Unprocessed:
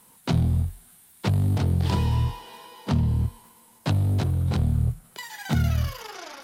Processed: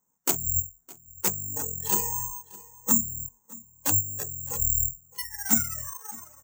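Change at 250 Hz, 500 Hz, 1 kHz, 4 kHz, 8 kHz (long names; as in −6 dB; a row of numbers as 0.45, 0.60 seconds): −8.0, −5.0, −2.5, −4.0, +19.5 decibels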